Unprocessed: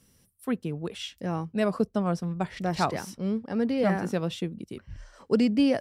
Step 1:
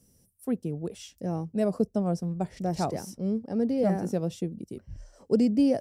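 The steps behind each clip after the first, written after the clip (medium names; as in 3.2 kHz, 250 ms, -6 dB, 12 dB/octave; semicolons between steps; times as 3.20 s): high-order bell 2 kHz -11.5 dB 2.4 oct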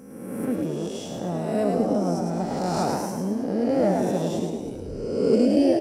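reverse spectral sustain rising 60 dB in 1.33 s; on a send: frequency-shifting echo 107 ms, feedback 51%, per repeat +57 Hz, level -4 dB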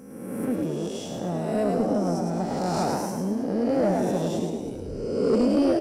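saturation -14 dBFS, distortion -18 dB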